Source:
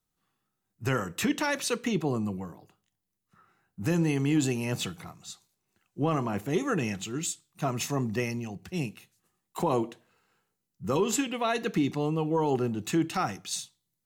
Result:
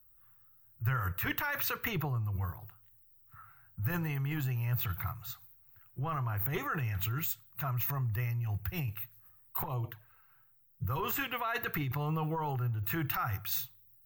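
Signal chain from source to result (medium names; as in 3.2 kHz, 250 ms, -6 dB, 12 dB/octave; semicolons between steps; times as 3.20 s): FFT filter 120 Hz 0 dB, 200 Hz -29 dB, 490 Hz -22 dB, 1.4 kHz -6 dB, 3.5 kHz -19 dB, 10 kHz -27 dB, 15 kHz +13 dB; in parallel at +2.5 dB: compressor with a negative ratio -46 dBFS, ratio -0.5; 9.63–10.87 s: on the sum: touch-sensitive flanger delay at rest 7.6 ms, full sweep at -35 dBFS; trim +3.5 dB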